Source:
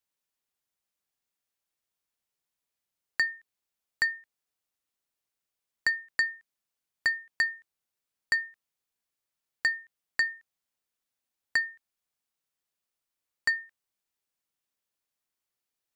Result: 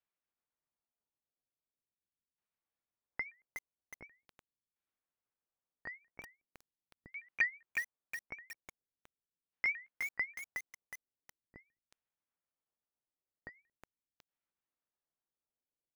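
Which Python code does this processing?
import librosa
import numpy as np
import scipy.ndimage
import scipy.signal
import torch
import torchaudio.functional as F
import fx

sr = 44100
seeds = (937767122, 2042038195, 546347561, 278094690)

y = fx.pitch_ramps(x, sr, semitones=5.0, every_ms=195)
y = fx.filter_lfo_lowpass(y, sr, shape='saw_down', hz=0.42, low_hz=240.0, high_hz=2700.0, q=0.81)
y = fx.echo_crushed(y, sr, ms=366, feedback_pct=55, bits=7, wet_db=-4)
y = y * 10.0 ** (-2.0 / 20.0)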